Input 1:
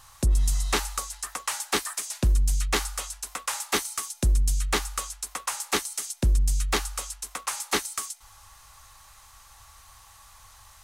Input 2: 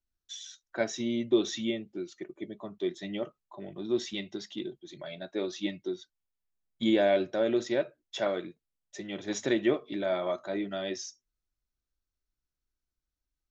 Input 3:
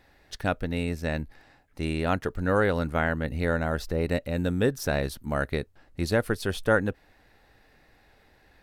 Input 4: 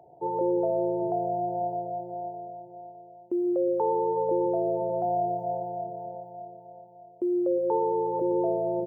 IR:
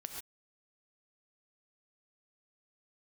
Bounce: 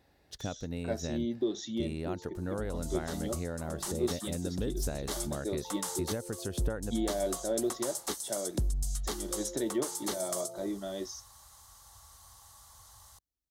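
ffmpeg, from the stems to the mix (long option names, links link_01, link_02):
-filter_complex "[0:a]adelay=2350,volume=-1dB[link_01];[1:a]adelay=100,volume=-2dB[link_02];[2:a]volume=-4dB,asplit=2[link_03][link_04];[3:a]asplit=2[link_05][link_06];[link_06]afreqshift=-0.66[link_07];[link_05][link_07]amix=inputs=2:normalize=1,adelay=1850,volume=-15.5dB[link_08];[link_04]apad=whole_len=581495[link_09];[link_01][link_09]sidechaincompress=threshold=-42dB:ratio=6:attack=24:release=124[link_10];[link_03][link_08]amix=inputs=2:normalize=0,acompressor=threshold=-31dB:ratio=6,volume=0dB[link_11];[link_10][link_02]amix=inputs=2:normalize=0,equalizer=frequency=2500:width=4.7:gain=-11,alimiter=limit=-20.5dB:level=0:latency=1:release=227,volume=0dB[link_12];[link_11][link_12]amix=inputs=2:normalize=0,highpass=55,equalizer=frequency=1800:width_type=o:width=1.7:gain=-8"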